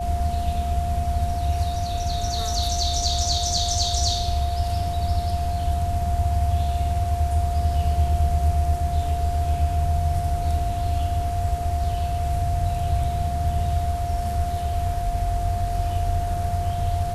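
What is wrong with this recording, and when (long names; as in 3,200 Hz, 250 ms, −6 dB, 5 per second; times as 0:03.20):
whistle 700 Hz −27 dBFS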